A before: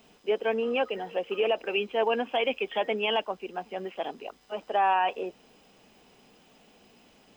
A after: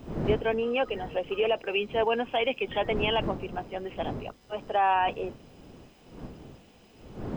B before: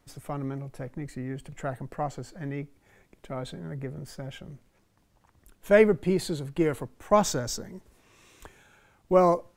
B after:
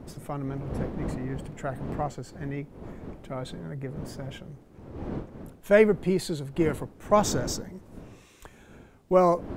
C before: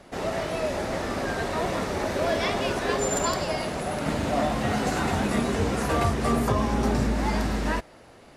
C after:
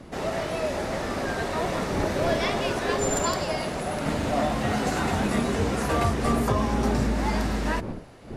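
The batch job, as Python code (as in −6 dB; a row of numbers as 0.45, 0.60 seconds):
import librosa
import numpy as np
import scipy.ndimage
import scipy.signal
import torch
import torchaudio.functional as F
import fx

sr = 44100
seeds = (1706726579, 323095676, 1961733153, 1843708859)

y = fx.dmg_wind(x, sr, seeds[0], corner_hz=320.0, level_db=-39.0)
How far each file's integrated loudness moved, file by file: 0.0, 0.0, 0.0 LU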